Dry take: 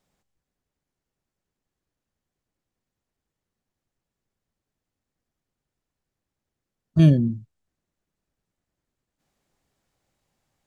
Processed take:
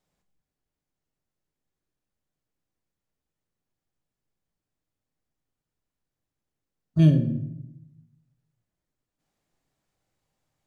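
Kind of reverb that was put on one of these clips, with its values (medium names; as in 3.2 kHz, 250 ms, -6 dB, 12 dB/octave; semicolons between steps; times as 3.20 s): simulated room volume 210 m³, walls mixed, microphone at 0.49 m; trim -5 dB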